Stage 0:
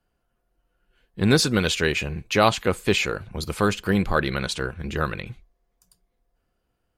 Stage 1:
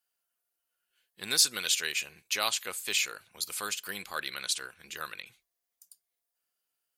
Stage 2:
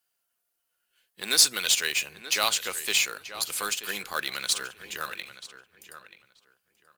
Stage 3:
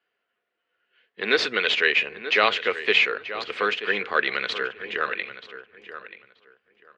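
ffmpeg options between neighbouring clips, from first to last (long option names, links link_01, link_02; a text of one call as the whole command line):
ffmpeg -i in.wav -af "aderivative,volume=3dB" out.wav
ffmpeg -i in.wav -filter_complex "[0:a]acrossover=split=170[link_01][link_02];[link_01]aeval=exprs='(mod(668*val(0)+1,2)-1)/668':channel_layout=same[link_03];[link_02]acrusher=bits=3:mode=log:mix=0:aa=0.000001[link_04];[link_03][link_04]amix=inputs=2:normalize=0,asplit=2[link_05][link_06];[link_06]adelay=932,lowpass=frequency=3000:poles=1,volume=-12dB,asplit=2[link_07][link_08];[link_08]adelay=932,lowpass=frequency=3000:poles=1,volume=0.2,asplit=2[link_09][link_10];[link_10]adelay=932,lowpass=frequency=3000:poles=1,volume=0.2[link_11];[link_05][link_07][link_09][link_11]amix=inputs=4:normalize=0,volume=4.5dB" out.wav
ffmpeg -i in.wav -af "highpass=120,equalizer=frequency=160:width_type=q:width=4:gain=-10,equalizer=frequency=220:width_type=q:width=4:gain=3,equalizer=frequency=440:width_type=q:width=4:gain=10,equalizer=frequency=870:width_type=q:width=4:gain=-4,equalizer=frequency=1900:width_type=q:width=4:gain=5,lowpass=frequency=3000:width=0.5412,lowpass=frequency=3000:width=1.3066,volume=7.5dB" out.wav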